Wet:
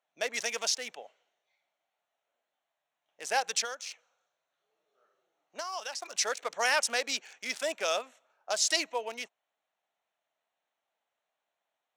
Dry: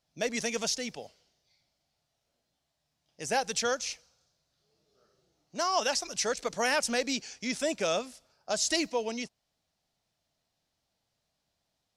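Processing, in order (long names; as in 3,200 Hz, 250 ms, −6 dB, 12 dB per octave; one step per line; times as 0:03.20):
adaptive Wiener filter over 9 samples
high-pass filter 690 Hz 12 dB per octave
0:03.63–0:06.02: downward compressor 4 to 1, threshold −39 dBFS, peak gain reduction 12 dB
level +2.5 dB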